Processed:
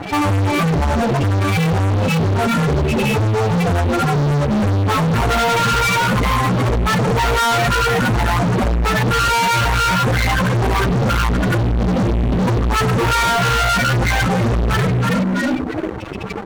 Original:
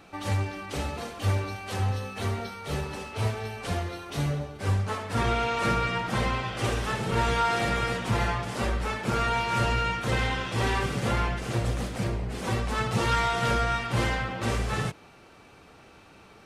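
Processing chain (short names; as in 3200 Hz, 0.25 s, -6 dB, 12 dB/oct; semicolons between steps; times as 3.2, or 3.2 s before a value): frequency-shifting echo 0.325 s, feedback 34%, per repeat +65 Hz, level -8 dB; compressor 2:1, threshold -41 dBFS, peak gain reduction 11.5 dB; loudest bins only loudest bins 8; high shelf 2100 Hz +7.5 dB; fuzz box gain 51 dB, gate -59 dBFS; notch 5000 Hz, Q 28; gain -1.5 dB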